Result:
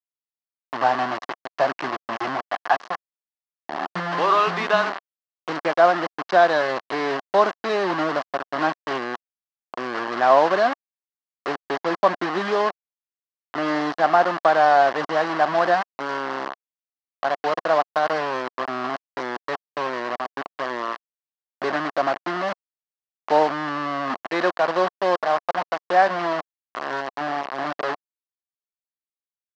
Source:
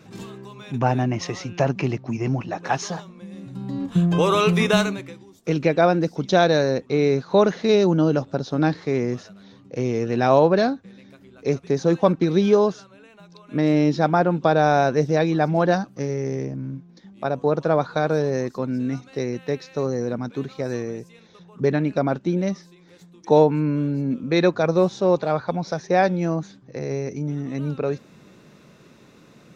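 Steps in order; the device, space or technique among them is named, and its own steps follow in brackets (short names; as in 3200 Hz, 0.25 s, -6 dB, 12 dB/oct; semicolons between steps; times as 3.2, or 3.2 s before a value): hand-held game console (bit-crush 4-bit; speaker cabinet 430–4100 Hz, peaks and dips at 460 Hz -7 dB, 710 Hz +5 dB, 1100 Hz +7 dB, 1700 Hz +4 dB, 2400 Hz -7 dB, 3600 Hz -7 dB)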